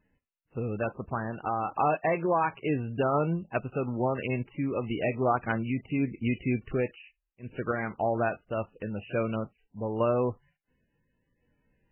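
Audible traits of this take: random-step tremolo; MP3

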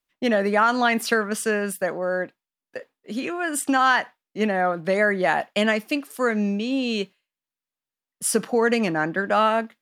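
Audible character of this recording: noise floor -91 dBFS; spectral tilt -4.0 dB/octave

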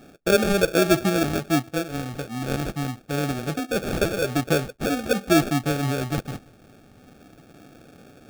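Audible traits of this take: phasing stages 2, 0.27 Hz, lowest notch 730–4100 Hz; aliases and images of a low sample rate 1 kHz, jitter 0%

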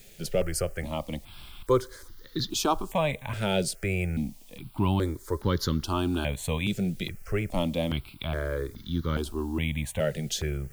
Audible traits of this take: a quantiser's noise floor 10-bit, dither triangular; notches that jump at a steady rate 2.4 Hz 290–2500 Hz

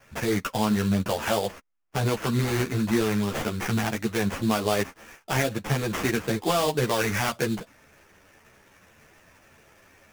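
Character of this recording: aliases and images of a low sample rate 4.1 kHz, jitter 20%; a shimmering, thickened sound

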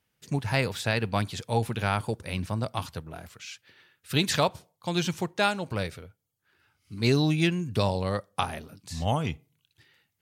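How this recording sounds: noise floor -78 dBFS; spectral tilt -5.5 dB/octave

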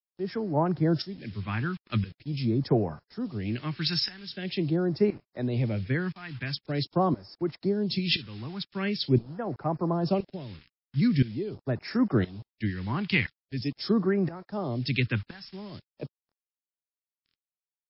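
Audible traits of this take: tremolo saw up 0.98 Hz, depth 90%; a quantiser's noise floor 8-bit, dither none; phasing stages 2, 0.44 Hz, lowest notch 540–3100 Hz; MP3

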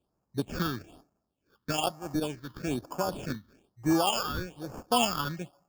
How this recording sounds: aliases and images of a low sample rate 2 kHz, jitter 0%; phasing stages 6, 1.1 Hz, lowest notch 640–3500 Hz; random flutter of the level

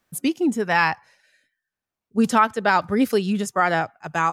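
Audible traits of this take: noise floor -88 dBFS; spectral tilt -5.0 dB/octave

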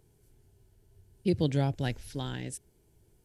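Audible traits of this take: noise floor -67 dBFS; spectral tilt -6.5 dB/octave

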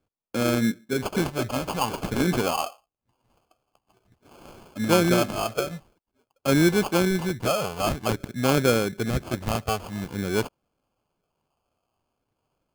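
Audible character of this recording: phasing stages 12, 0.49 Hz, lowest notch 330–2200 Hz; aliases and images of a low sample rate 1.9 kHz, jitter 0%

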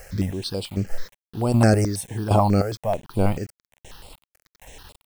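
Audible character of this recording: chopped level 1.3 Hz, depth 65%, duty 40%; a quantiser's noise floor 8-bit, dither none; notches that jump at a steady rate 9.2 Hz 990–6100 Hz

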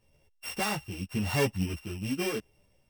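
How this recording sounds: a buzz of ramps at a fixed pitch in blocks of 16 samples; tremolo triangle 0.88 Hz, depth 70%; a shimmering, thickened sound

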